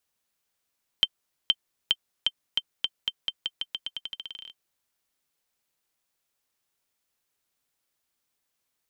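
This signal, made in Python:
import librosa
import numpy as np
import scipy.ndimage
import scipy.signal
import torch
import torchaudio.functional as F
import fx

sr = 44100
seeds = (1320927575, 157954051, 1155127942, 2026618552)

y = fx.bouncing_ball(sr, first_gap_s=0.47, ratio=0.87, hz=3120.0, decay_ms=47.0, level_db=-7.5)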